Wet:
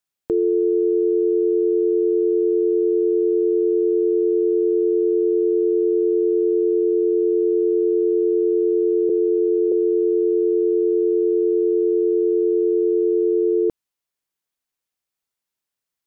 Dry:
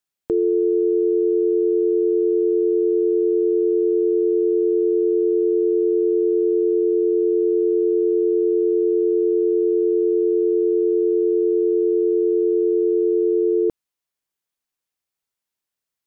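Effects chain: 9.09–9.72 steep low-pass 530 Hz 96 dB/oct

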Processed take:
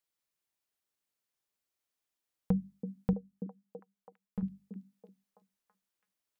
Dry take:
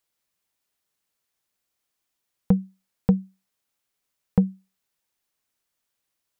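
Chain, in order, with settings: notches 50/100/150/200/250 Hz; 3.13–4.43 resonator 210 Hz, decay 0.15 s, harmonics all, mix 90%; delay with a stepping band-pass 0.33 s, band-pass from 310 Hz, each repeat 0.7 oct, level -4 dB; gain -8.5 dB

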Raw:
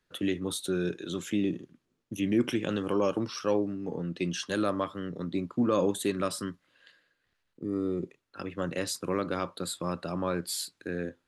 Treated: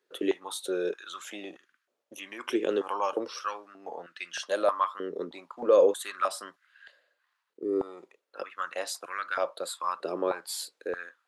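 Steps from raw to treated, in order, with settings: stepped high-pass 3.2 Hz 410–1500 Hz; gain -2 dB

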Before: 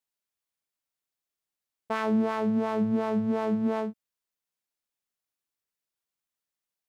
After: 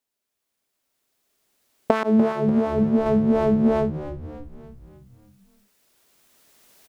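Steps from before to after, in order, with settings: recorder AGC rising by 10 dB/s; 2.03–3.06 expander -23 dBFS; thirty-one-band EQ 250 Hz +7 dB, 400 Hz +7 dB, 630 Hz +5 dB; frequency-shifting echo 0.293 s, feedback 55%, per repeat -70 Hz, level -13 dB; gain +4 dB

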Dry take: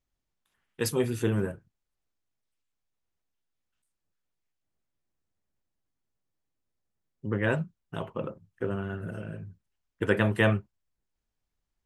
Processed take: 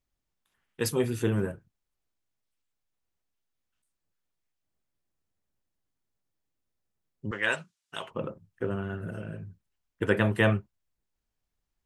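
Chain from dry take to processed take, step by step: 7.31–8.11 weighting filter ITU-R 468

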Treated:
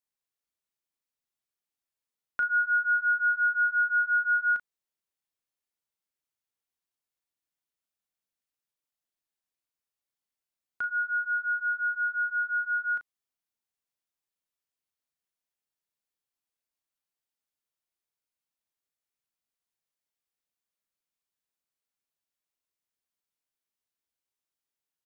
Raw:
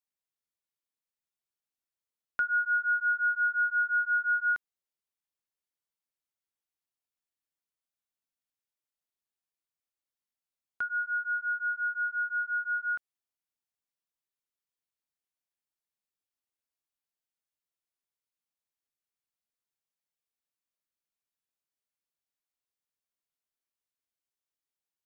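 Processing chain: doubler 36 ms -8 dB

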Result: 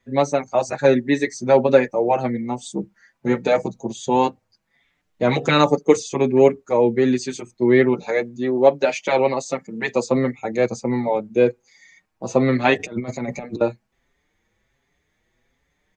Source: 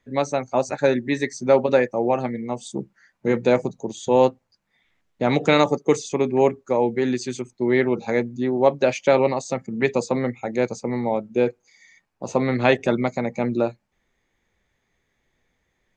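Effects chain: 8.03–10.07 low shelf 170 Hz -11.5 dB; 12.79–13.61 negative-ratio compressor -28 dBFS, ratio -0.5; endless flanger 5.7 ms +1.3 Hz; gain +5 dB

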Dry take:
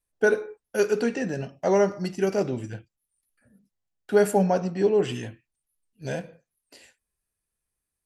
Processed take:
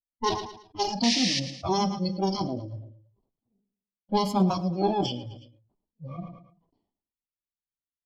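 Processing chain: minimum comb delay 0.93 ms; low-pass opened by the level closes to 760 Hz, open at -21.5 dBFS; in parallel at -1.5 dB: compressor, threshold -38 dBFS, peak gain reduction 17.5 dB; on the sum: band shelf 1800 Hz -13.5 dB 1.2 oct; spectral noise reduction 23 dB; painted sound noise, 1.03–1.4, 1700–9700 Hz -31 dBFS; EQ curve 150 Hz 0 dB, 210 Hz +7 dB, 1300 Hz +1 dB, 5500 Hz +12 dB, 8200 Hz -18 dB, 12000 Hz -11 dB; feedback echo 0.111 s, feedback 40%, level -18 dB; sustainer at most 85 dB/s; gain -3 dB

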